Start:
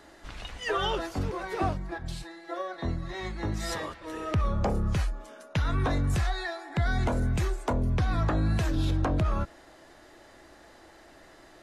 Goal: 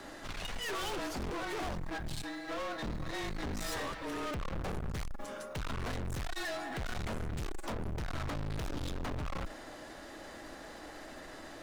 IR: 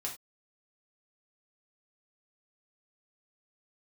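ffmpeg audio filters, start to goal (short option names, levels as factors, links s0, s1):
-af "afreqshift=-26,aeval=exprs='(tanh(141*val(0)+0.35)-tanh(0.35))/141':c=same,acrusher=bits=8:mode=log:mix=0:aa=0.000001,volume=2.24"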